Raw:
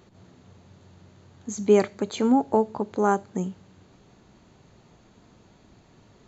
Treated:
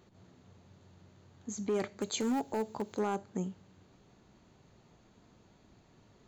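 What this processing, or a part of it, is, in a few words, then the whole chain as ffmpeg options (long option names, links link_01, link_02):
limiter into clipper: -filter_complex "[0:a]alimiter=limit=-15.5dB:level=0:latency=1:release=26,asoftclip=type=hard:threshold=-19dB,asettb=1/sr,asplit=3[link_01][link_02][link_03];[link_01]atrim=end=2.004[link_04];[link_02]atrim=start=2:end=2.99,asetpts=PTS-STARTPTS,afade=type=in:duration=0.004:curve=qsin,afade=type=out:start_time=0.986:duration=0.004:curve=qsin,aemphasis=mode=production:type=75fm[link_05];[link_03]atrim=start=2.986[link_06];[link_04][link_05]acrossfade=duration=0.004:curve1=hsin:curve2=qsin[link_07];[link_07][link_06]acrossfade=duration=0.004:curve1=qsin:curve2=hsin,volume=-7dB"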